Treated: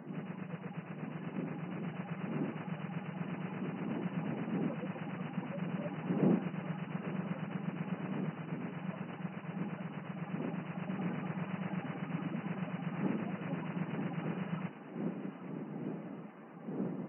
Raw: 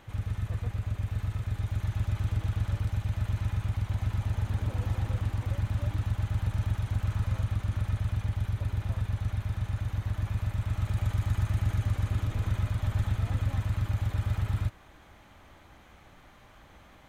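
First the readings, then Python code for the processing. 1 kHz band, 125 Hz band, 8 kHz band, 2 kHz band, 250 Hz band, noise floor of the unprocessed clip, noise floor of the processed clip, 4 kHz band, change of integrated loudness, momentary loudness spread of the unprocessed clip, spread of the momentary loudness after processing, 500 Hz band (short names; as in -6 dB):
-0.5 dB, -13.0 dB, n/a, -2.0 dB, +6.0 dB, -55 dBFS, -49 dBFS, -8.5 dB, -8.5 dB, 3 LU, 7 LU, +5.0 dB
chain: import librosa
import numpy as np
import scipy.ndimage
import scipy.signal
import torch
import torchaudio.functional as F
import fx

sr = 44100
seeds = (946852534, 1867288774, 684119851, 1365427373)

p1 = fx.spec_quant(x, sr, step_db=30)
p2 = fx.dmg_wind(p1, sr, seeds[0], corner_hz=200.0, level_db=-40.0)
p3 = fx.brickwall_bandpass(p2, sr, low_hz=150.0, high_hz=3000.0)
p4 = fx.peak_eq(p3, sr, hz=2300.0, db=-7.5, octaves=2.8)
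p5 = p4 + fx.echo_thinned(p4, sr, ms=823, feedback_pct=64, hz=410.0, wet_db=-11, dry=0)
y = F.gain(torch.from_numpy(p5), 3.0).numpy()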